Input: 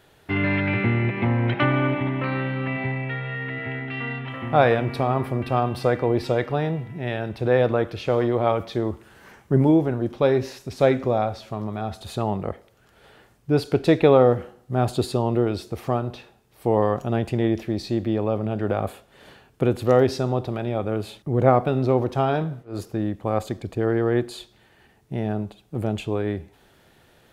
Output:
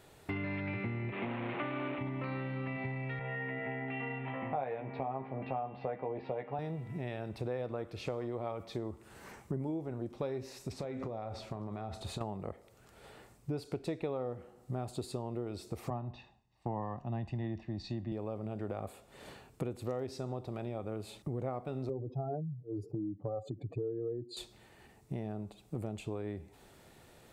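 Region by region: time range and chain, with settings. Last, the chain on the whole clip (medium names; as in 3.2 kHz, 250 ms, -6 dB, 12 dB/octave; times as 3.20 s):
1.12–1.99 s: one-bit delta coder 16 kbps, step -19.5 dBFS + high-pass 200 Hz
3.19–6.59 s: cabinet simulation 180–2700 Hz, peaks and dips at 330 Hz -7 dB, 790 Hz +6 dB, 1.3 kHz -6 dB + doubling 15 ms -5.5 dB
10.72–12.21 s: low-pass 3.7 kHz 6 dB/octave + compression, threshold -29 dBFS + doubling 35 ms -13 dB
15.90–18.12 s: distance through air 170 m + comb 1.1 ms, depth 67% + three bands expanded up and down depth 70%
21.89–24.37 s: spectral contrast enhancement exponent 2.4 + high-pass 99 Hz 24 dB/octave + comb 6.9 ms, depth 50%
whole clip: graphic EQ with 31 bands 1.6 kHz -6 dB, 3.15 kHz -5 dB, 8 kHz +6 dB; compression 5:1, threshold -34 dBFS; trim -2 dB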